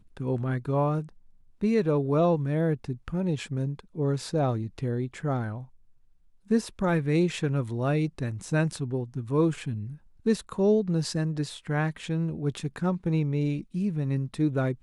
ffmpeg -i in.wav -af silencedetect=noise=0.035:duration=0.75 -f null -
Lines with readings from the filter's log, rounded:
silence_start: 5.57
silence_end: 6.51 | silence_duration: 0.93